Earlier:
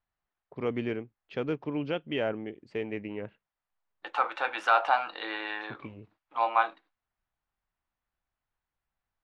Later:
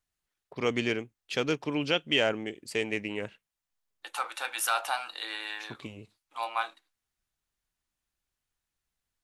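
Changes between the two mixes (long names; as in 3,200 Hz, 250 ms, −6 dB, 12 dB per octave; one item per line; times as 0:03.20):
second voice −11.0 dB
master: remove head-to-tape spacing loss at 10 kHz 43 dB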